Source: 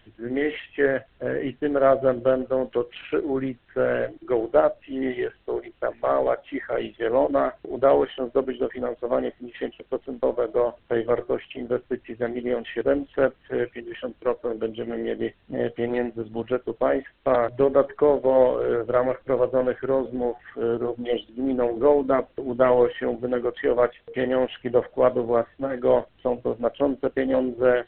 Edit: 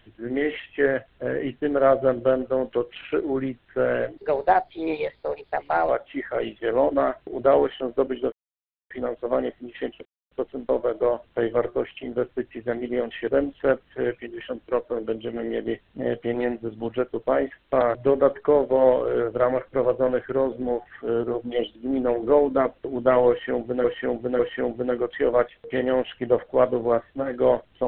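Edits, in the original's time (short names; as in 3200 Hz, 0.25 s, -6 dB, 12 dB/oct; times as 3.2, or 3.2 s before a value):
4.18–6.27 speed 122%
8.7 insert silence 0.58 s
9.85 insert silence 0.26 s
22.83–23.38 loop, 3 plays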